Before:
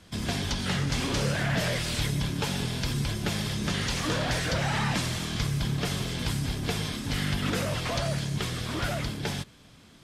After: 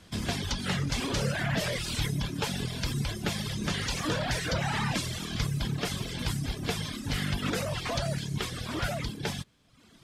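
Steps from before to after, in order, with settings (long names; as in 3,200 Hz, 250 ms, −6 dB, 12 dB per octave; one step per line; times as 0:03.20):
reverb reduction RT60 0.93 s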